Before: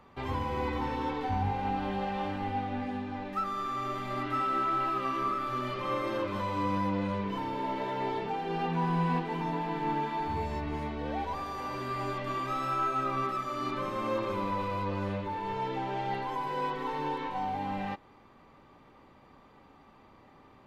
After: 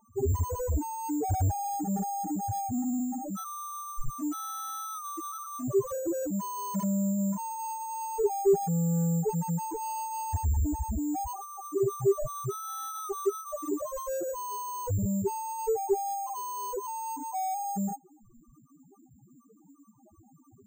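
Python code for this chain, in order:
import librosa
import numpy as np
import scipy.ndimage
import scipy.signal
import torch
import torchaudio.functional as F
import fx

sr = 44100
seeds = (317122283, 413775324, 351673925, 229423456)

p1 = fx.dynamic_eq(x, sr, hz=1200.0, q=6.7, threshold_db=-48.0, ratio=4.0, max_db=-4)
p2 = fx.quant_dither(p1, sr, seeds[0], bits=6, dither='none')
p3 = p1 + (p2 * 10.0 ** (-7.5 / 20.0))
p4 = fx.spec_topn(p3, sr, count=1)
p5 = 10.0 ** (-39.5 / 20.0) * np.tanh(p4 / 10.0 ** (-39.5 / 20.0))
p6 = (np.kron(p5[::6], np.eye(6)[0]) * 6)[:len(p5)]
p7 = fx.tilt_eq(p6, sr, slope=-4.0)
p8 = fx.notch(p7, sr, hz=2400.0, q=20.0)
p9 = fx.small_body(p8, sr, hz=(410.0, 640.0), ring_ms=60, db=17)
y = p9 * 10.0 ** (3.5 / 20.0)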